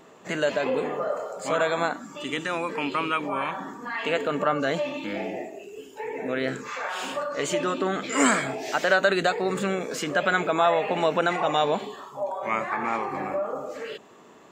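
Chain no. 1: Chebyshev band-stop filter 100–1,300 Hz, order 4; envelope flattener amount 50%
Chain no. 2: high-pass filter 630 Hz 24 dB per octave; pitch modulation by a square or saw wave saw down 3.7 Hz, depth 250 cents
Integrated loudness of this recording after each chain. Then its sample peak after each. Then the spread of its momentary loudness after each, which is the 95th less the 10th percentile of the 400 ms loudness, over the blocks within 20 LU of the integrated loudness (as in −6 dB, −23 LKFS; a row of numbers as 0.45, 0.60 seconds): −26.5, −28.5 LKFS; −10.0, −8.5 dBFS; 9, 13 LU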